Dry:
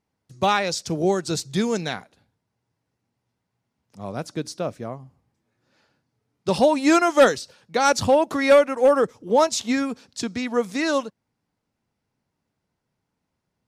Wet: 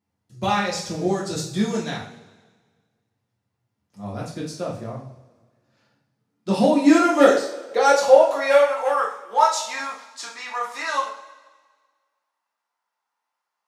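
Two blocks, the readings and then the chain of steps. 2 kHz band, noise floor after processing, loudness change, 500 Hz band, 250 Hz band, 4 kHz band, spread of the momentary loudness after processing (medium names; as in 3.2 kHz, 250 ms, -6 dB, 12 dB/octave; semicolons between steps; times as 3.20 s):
0.0 dB, -82 dBFS, +1.0 dB, +0.5 dB, +1.0 dB, -1.5 dB, 19 LU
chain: two-slope reverb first 0.45 s, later 1.6 s, from -17 dB, DRR -5 dB; high-pass sweep 98 Hz -> 970 Hz, 5.62–8.99 s; trim -7.5 dB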